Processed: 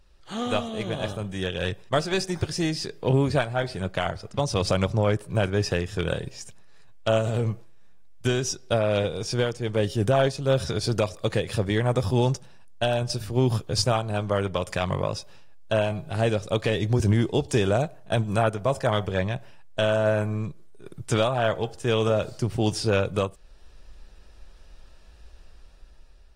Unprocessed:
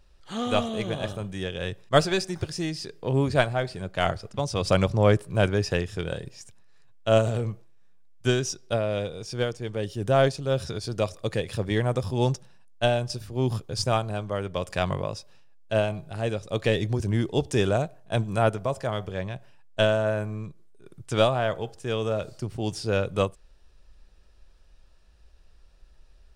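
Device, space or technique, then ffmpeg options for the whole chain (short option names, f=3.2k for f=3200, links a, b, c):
low-bitrate web radio: -af "dynaudnorm=f=590:g=5:m=9.5dB,alimiter=limit=-12dB:level=0:latency=1:release=443" -ar 48000 -c:a aac -b:a 48k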